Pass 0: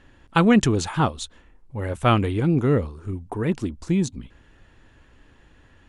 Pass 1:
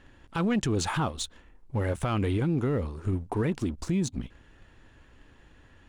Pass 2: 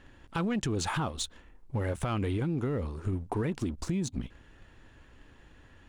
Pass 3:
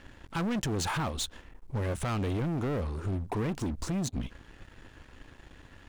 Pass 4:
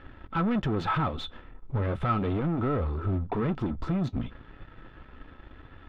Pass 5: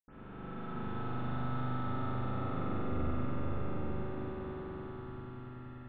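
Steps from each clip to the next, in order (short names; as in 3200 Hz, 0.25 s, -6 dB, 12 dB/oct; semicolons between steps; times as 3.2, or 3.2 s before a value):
sample leveller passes 1; compressor 3:1, threshold -23 dBFS, peak gain reduction 10 dB; limiter -20 dBFS, peak gain reduction 10 dB
compressor, threshold -27 dBFS, peak gain reduction 5 dB
sample leveller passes 3; gain -6 dB
flange 0.35 Hz, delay 2.3 ms, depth 6.1 ms, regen -62%; air absorption 390 m; small resonant body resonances 1300/3500 Hz, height 14 dB, ringing for 65 ms; gain +8 dB
time blur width 1.07 s; swelling echo 96 ms, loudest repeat 5, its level -7 dB; reverb RT60 2.7 s, pre-delay 80 ms; gain +1 dB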